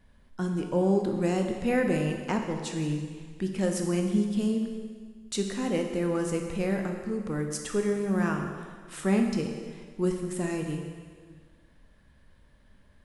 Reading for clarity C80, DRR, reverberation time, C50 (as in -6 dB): 6.0 dB, 3.0 dB, 1.7 s, 5.0 dB